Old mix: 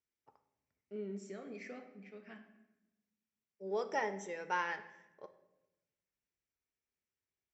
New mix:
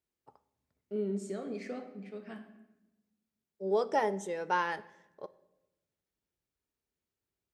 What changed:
second voice: send -6.5 dB; master: remove rippled Chebyshev low-pass 7700 Hz, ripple 9 dB

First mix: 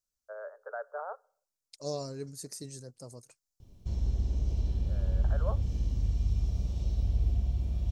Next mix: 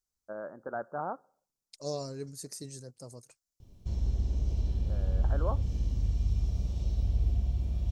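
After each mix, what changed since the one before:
first voice: remove rippled Chebyshev high-pass 420 Hz, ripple 6 dB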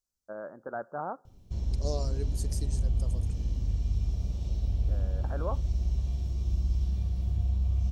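background: entry -2.35 s

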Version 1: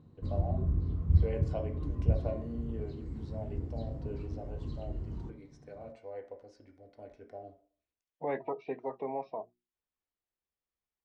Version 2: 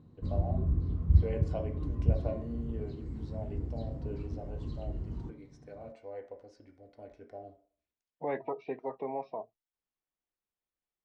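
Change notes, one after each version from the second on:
second voice: add bell 65 Hz -14 dB 0.4 oct; master: remove notches 60/120/180/240/300/360 Hz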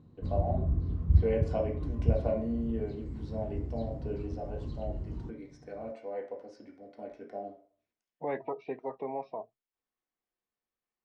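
first voice: send +8.5 dB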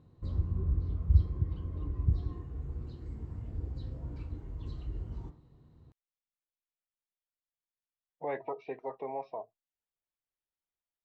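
first voice: muted; master: add bell 220 Hz -7.5 dB 1.2 oct

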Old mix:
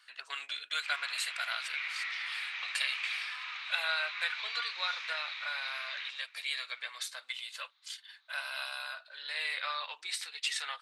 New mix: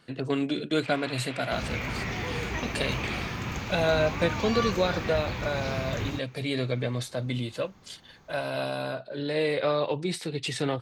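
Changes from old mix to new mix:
second sound: remove ladder low-pass 4000 Hz, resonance 85%; master: remove HPF 1200 Hz 24 dB/oct

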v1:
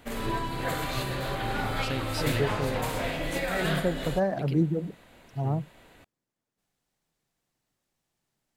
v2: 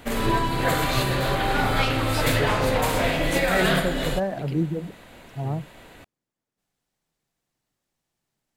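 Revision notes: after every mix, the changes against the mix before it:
background +8.0 dB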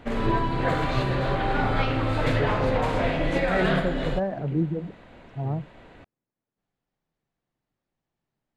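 first voice: add air absorption 390 m; master: add tape spacing loss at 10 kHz 23 dB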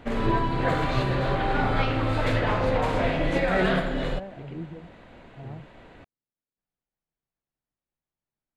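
first voice: add tilt +1.5 dB/oct; second voice -12.0 dB

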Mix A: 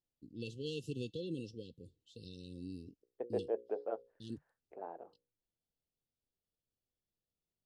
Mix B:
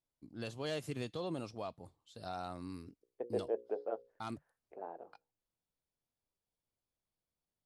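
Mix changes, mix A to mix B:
first voice: remove brick-wall FIR band-stop 530–2600 Hz; master: remove air absorption 54 m

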